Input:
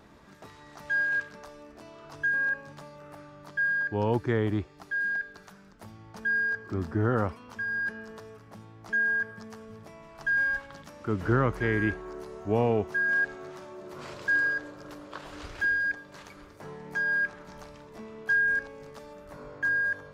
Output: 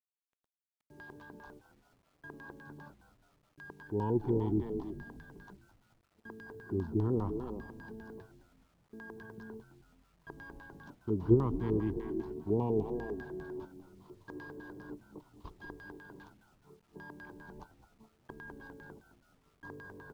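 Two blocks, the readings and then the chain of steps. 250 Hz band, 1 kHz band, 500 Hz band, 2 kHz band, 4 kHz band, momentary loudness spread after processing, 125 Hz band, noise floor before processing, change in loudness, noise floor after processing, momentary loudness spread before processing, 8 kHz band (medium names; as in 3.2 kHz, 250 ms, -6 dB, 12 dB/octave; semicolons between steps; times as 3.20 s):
-1.5 dB, -9.5 dB, -4.0 dB, -26.0 dB, under -15 dB, 22 LU, -4.0 dB, -52 dBFS, -7.5 dB, -76 dBFS, 21 LU, no reading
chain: speakerphone echo 320 ms, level -6 dB; gate -39 dBFS, range -28 dB; in parallel at 0 dB: level held to a coarse grid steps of 22 dB; on the sum: LFO low-pass square 5 Hz 430–3600 Hz; FFT filter 120 Hz 0 dB, 380 Hz -1 dB, 550 Hz -14 dB, 990 Hz +2 dB, 1.4 kHz -21 dB, 2.4 kHz -21 dB, 6.8 kHz -7 dB; on a send: frequency-shifting echo 212 ms, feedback 54%, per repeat -89 Hz, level -14 dB; on the sum: bit crusher 11-bit; trim -6 dB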